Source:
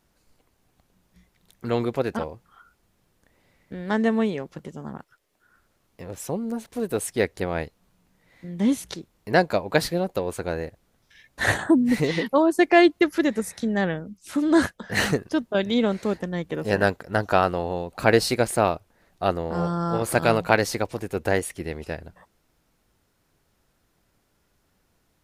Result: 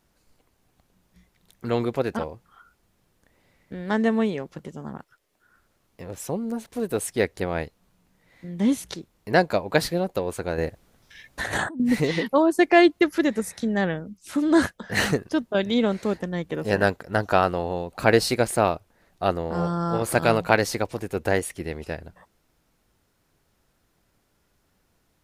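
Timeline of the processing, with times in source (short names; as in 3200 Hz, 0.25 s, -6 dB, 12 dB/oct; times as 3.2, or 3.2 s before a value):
10.58–11.8 negative-ratio compressor -29 dBFS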